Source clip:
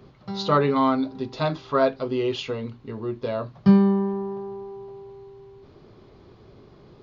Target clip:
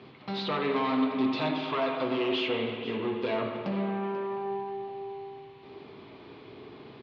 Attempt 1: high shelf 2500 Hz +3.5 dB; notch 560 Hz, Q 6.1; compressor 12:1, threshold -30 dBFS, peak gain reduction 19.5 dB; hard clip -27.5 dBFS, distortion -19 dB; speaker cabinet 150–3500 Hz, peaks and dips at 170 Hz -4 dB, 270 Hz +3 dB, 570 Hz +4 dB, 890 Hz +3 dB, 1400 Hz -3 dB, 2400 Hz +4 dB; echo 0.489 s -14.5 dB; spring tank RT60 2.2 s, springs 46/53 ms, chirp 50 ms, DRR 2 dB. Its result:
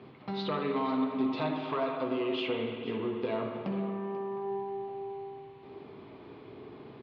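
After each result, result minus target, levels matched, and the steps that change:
compressor: peak gain reduction +5.5 dB; 4000 Hz band -3.0 dB
change: compressor 12:1, threshold -24 dBFS, peak gain reduction 14 dB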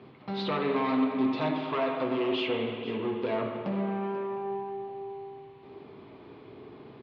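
4000 Hz band -3.0 dB
change: high shelf 2500 Hz +14.5 dB

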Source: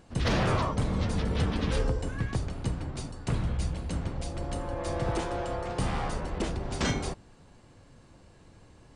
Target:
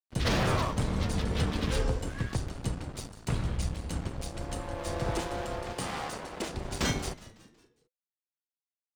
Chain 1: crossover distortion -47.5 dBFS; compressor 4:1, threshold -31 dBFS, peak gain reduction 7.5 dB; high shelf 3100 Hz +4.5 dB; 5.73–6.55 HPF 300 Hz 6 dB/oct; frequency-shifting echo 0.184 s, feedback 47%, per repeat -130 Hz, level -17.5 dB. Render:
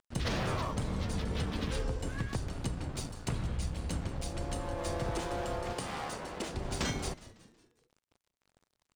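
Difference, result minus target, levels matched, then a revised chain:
compressor: peak gain reduction +7.5 dB; crossover distortion: distortion -7 dB
crossover distortion -40.5 dBFS; high shelf 3100 Hz +4.5 dB; 5.73–6.55 HPF 300 Hz 6 dB/oct; frequency-shifting echo 0.184 s, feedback 47%, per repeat -130 Hz, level -17.5 dB

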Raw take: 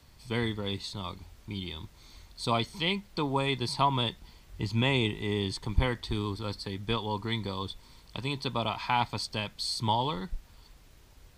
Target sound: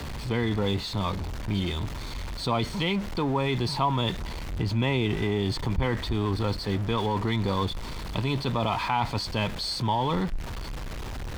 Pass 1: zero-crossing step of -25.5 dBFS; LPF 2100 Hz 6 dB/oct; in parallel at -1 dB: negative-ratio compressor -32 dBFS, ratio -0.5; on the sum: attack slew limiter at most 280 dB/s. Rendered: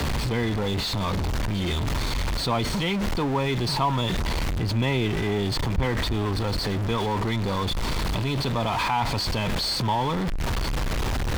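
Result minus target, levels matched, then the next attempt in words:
zero-crossing step: distortion +7 dB
zero-crossing step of -35.5 dBFS; LPF 2100 Hz 6 dB/oct; in parallel at -1 dB: negative-ratio compressor -32 dBFS, ratio -0.5; on the sum: attack slew limiter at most 280 dB/s

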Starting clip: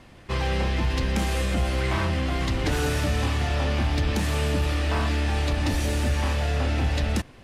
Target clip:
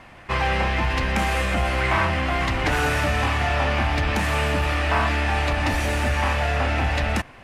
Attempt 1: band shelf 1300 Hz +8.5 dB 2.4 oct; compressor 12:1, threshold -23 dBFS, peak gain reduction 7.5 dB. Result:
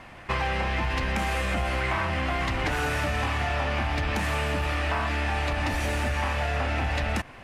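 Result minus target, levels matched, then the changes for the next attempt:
compressor: peak gain reduction +7.5 dB
remove: compressor 12:1, threshold -23 dBFS, peak gain reduction 7.5 dB

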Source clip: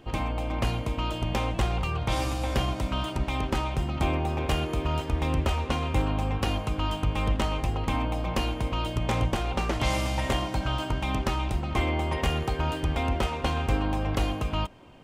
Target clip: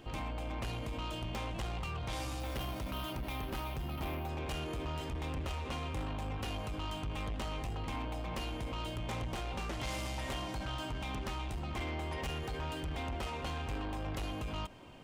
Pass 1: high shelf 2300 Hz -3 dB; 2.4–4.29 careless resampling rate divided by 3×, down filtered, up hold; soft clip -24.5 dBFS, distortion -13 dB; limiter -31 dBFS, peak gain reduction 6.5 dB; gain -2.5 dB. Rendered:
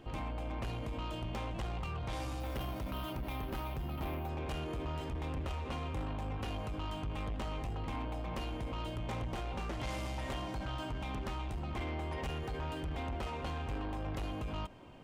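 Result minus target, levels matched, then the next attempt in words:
4000 Hz band -3.5 dB
high shelf 2300 Hz +4 dB; 2.4–4.29 careless resampling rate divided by 3×, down filtered, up hold; soft clip -24.5 dBFS, distortion -12 dB; limiter -31 dBFS, peak gain reduction 6.5 dB; gain -2.5 dB

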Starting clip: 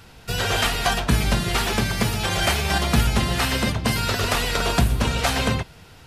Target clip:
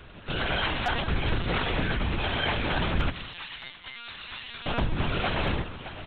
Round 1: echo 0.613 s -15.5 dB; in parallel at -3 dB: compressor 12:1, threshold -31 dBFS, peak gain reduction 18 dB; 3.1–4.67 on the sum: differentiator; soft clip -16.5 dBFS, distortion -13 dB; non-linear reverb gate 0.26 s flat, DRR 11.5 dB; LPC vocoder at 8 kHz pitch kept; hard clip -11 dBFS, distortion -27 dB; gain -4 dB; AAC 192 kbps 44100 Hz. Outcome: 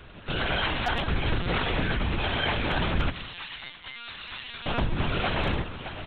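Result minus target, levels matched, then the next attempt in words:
compressor: peak gain reduction -10.5 dB
echo 0.613 s -15.5 dB; in parallel at -3 dB: compressor 12:1, threshold -42.5 dBFS, peak gain reduction 28.5 dB; 3.1–4.67 on the sum: differentiator; soft clip -16.5 dBFS, distortion -13 dB; non-linear reverb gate 0.26 s flat, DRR 11.5 dB; LPC vocoder at 8 kHz pitch kept; hard clip -11 dBFS, distortion -28 dB; gain -4 dB; AAC 192 kbps 44100 Hz

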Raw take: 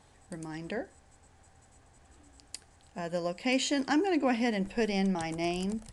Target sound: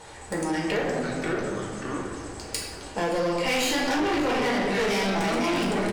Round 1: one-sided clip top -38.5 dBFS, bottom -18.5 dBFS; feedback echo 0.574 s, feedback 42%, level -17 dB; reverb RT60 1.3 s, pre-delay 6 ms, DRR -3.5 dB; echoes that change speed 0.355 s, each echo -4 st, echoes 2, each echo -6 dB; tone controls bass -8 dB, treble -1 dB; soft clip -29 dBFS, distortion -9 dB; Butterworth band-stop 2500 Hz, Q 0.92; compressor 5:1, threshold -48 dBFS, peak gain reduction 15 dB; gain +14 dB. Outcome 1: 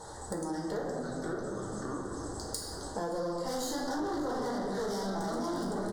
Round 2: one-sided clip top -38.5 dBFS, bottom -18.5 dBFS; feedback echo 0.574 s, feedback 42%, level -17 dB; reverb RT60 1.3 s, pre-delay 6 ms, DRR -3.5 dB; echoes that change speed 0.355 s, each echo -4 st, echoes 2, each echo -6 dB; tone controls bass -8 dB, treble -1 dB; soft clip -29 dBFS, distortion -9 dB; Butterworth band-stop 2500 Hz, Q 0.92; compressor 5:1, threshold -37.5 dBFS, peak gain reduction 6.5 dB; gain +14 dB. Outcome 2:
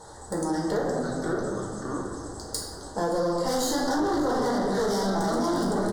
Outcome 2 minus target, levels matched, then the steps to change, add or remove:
2000 Hz band -7.5 dB
remove: Butterworth band-stop 2500 Hz, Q 0.92

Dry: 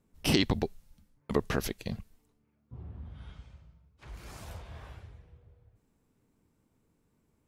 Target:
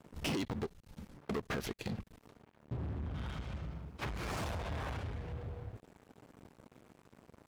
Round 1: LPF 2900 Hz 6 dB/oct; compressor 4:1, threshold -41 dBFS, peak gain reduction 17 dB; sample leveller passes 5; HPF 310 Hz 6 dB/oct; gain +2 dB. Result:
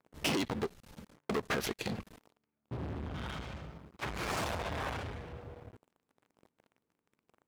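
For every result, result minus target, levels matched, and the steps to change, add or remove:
compressor: peak gain reduction -7.5 dB; 125 Hz band -5.0 dB
change: compressor 4:1, threshold -51 dBFS, peak gain reduction 24.5 dB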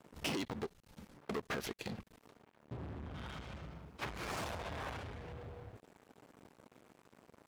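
125 Hz band -4.0 dB
change: HPF 99 Hz 6 dB/oct

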